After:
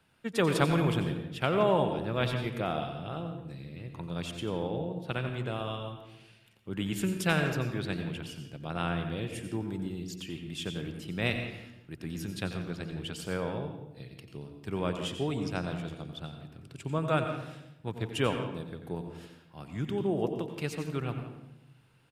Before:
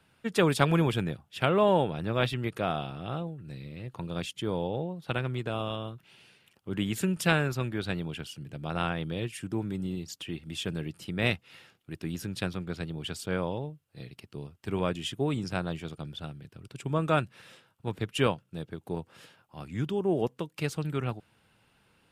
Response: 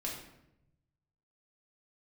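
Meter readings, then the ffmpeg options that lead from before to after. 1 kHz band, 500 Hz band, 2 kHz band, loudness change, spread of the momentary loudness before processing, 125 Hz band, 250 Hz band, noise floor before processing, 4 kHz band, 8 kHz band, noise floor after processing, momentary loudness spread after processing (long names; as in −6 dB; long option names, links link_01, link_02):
−2.0 dB, −1.5 dB, −2.0 dB, −2.0 dB, 16 LU, −1.5 dB, −1.5 dB, −68 dBFS, −2.0 dB, −2.5 dB, −59 dBFS, 16 LU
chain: -filter_complex "[0:a]asplit=2[link_01][link_02];[link_02]adelay=170,highpass=300,lowpass=3400,asoftclip=type=hard:threshold=-14.5dB,volume=-13dB[link_03];[link_01][link_03]amix=inputs=2:normalize=0,asplit=2[link_04][link_05];[1:a]atrim=start_sample=2205,adelay=89[link_06];[link_05][link_06]afir=irnorm=-1:irlink=0,volume=-8dB[link_07];[link_04][link_07]amix=inputs=2:normalize=0,volume=-3dB"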